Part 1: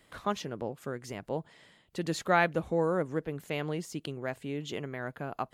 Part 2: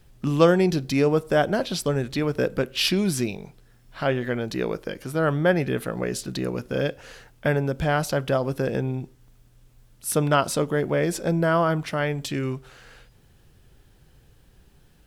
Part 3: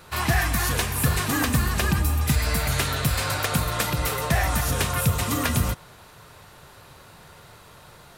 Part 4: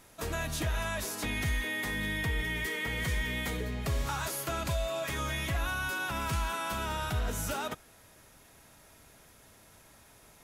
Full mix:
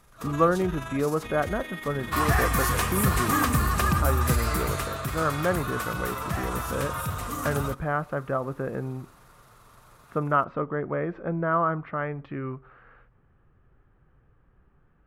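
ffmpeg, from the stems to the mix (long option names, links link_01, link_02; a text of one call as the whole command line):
ffmpeg -i stem1.wav -i stem2.wav -i stem3.wav -i stem4.wav -filter_complex "[0:a]volume=-16.5dB[link_01];[1:a]lowpass=frequency=2000:width=0.5412,lowpass=frequency=2000:width=1.3066,volume=-6dB[link_02];[2:a]equalizer=frequency=3500:width_type=o:width=1.5:gain=-4.5,asoftclip=type=tanh:threshold=-12dB,adelay=2000,volume=-1dB,afade=type=out:start_time=4.29:duration=0.67:silence=0.375837[link_03];[3:a]tremolo=f=23:d=0.519,volume=-3.5dB[link_04];[link_01][link_02][link_03][link_04]amix=inputs=4:normalize=0,equalizer=frequency=1200:width_type=o:width=0.35:gain=10.5" out.wav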